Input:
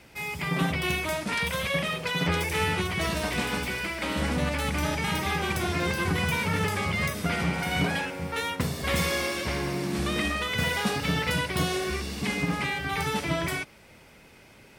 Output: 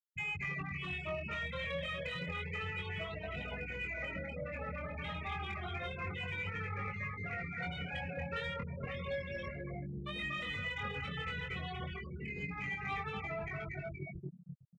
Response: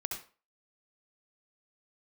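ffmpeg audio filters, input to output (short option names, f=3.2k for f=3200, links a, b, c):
-filter_complex "[0:a]asettb=1/sr,asplit=3[a][b][c];[a]atrim=end=4.784[d];[b]atrim=start=4.78:end=7.15,asetpts=PTS-STARTPTS,afade=t=in:d=0.004:c=qsin,afade=t=out:st=2.366:d=0.004:c=qsin,lowpass=5k[e];[c]atrim=start=7.146[f];[d][e]acrossfade=d=0.004:c1=hsin:c2=qsin[g];[g][f]acrossfade=d=0.004:c1=qsin:c2=hsin,aecho=1:1:237|474|711|948|1185|1422|1659:0.562|0.304|0.164|0.0885|0.0478|0.0258|0.0139,acrossover=split=130|2800[h][i][j];[h]acompressor=threshold=-39dB:ratio=4[k];[i]acompressor=threshold=-41dB:ratio=4[l];[j]acompressor=threshold=-38dB:ratio=4[m];[k][l][m]amix=inputs=3:normalize=0,afwtdn=0.01,afftfilt=real='re*gte(hypot(re,im),0.0251)':imag='im*gte(hypot(re,im),0.0251)':win_size=1024:overlap=0.75,aecho=1:1:1.6:0.57,acompressor=threshold=-48dB:ratio=8,asplit=2[n][o];[o]highpass=f=720:p=1,volume=13dB,asoftclip=type=tanh:threshold=-37dB[p];[n][p]amix=inputs=2:normalize=0,lowpass=f=1.6k:p=1,volume=-6dB,flanger=delay=20:depth=3.2:speed=0.3,volume=14dB"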